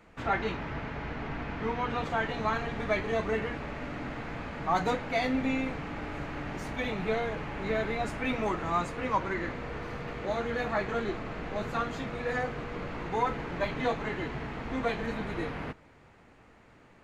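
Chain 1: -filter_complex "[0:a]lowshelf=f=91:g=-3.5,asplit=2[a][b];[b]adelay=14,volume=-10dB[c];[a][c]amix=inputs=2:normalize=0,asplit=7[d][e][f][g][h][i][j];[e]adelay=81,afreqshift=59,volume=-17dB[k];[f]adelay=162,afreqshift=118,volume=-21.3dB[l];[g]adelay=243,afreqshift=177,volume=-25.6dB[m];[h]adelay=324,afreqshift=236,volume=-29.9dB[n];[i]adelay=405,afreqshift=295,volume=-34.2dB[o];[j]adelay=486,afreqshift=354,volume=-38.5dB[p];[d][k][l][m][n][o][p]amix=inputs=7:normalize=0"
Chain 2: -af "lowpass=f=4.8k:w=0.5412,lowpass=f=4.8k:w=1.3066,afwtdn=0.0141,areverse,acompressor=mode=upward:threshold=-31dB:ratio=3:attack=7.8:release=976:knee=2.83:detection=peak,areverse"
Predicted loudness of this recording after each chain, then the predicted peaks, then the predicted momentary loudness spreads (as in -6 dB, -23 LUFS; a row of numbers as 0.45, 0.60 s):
-32.5, -33.0 LUFS; -14.0, -16.0 dBFS; 8, 9 LU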